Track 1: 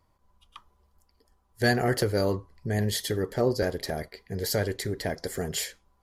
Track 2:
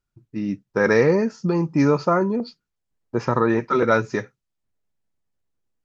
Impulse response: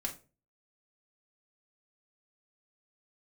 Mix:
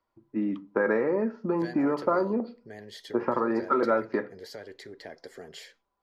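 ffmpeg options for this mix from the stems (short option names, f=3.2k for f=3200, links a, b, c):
-filter_complex "[0:a]acompressor=threshold=-28dB:ratio=4,volume=-8.5dB[a];[1:a]lowpass=1.5k,acompressor=threshold=-22dB:ratio=6,volume=-1.5dB,asplit=2[b][c];[c]volume=-4.5dB[d];[2:a]atrim=start_sample=2205[e];[d][e]afir=irnorm=-1:irlink=0[f];[a][b][f]amix=inputs=3:normalize=0,acrossover=split=240 5400:gain=0.158 1 0.141[g][h][i];[g][h][i]amix=inputs=3:normalize=0"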